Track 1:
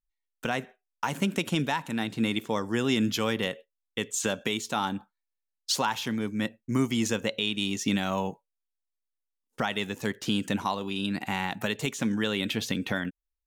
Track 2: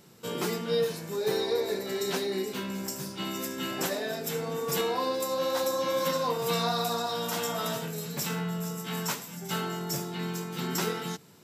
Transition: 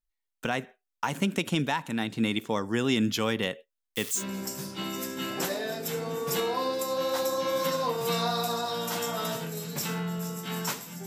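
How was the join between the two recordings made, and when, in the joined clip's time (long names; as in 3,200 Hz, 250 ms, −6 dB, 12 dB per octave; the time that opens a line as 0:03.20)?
track 1
0:03.78–0:04.24: spike at every zero crossing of −26 dBFS
0:04.19: continue with track 2 from 0:02.60, crossfade 0.10 s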